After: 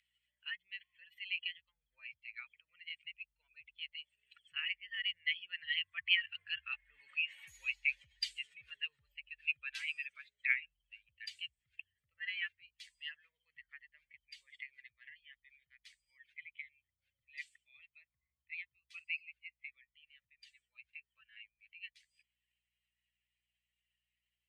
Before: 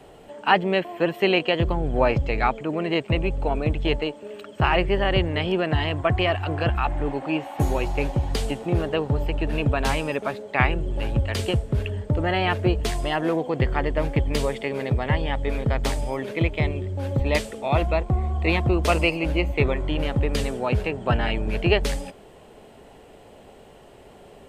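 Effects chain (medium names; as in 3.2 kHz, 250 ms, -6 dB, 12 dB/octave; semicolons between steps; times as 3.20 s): spectral contrast enhancement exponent 1.8; Doppler pass-by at 7.70 s, 6 m/s, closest 4.7 m; hum 60 Hz, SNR 14 dB; elliptic high-pass 2 kHz, stop band 60 dB; trim +11.5 dB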